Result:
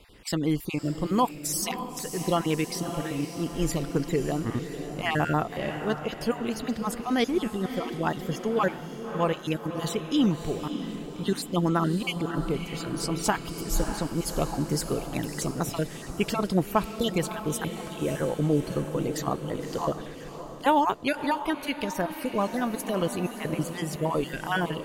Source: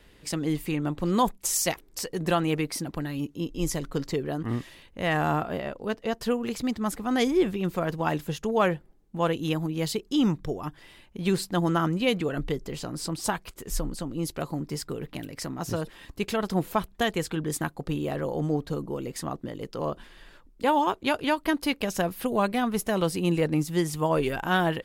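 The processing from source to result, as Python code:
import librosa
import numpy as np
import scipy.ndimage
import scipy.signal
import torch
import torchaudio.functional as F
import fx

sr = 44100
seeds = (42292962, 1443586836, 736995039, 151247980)

y = fx.spec_dropout(x, sr, seeds[0], share_pct=31)
y = fx.echo_diffused(y, sr, ms=597, feedback_pct=52, wet_db=-9.0)
y = fx.rider(y, sr, range_db=10, speed_s=2.0)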